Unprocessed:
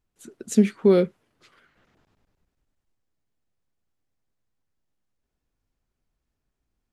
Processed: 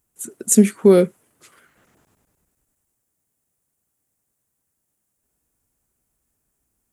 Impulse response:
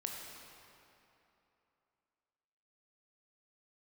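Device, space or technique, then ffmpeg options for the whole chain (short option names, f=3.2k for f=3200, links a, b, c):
budget condenser microphone: -af "highpass=f=77:p=1,highshelf=f=6.3k:t=q:w=1.5:g=13,volume=5.5dB"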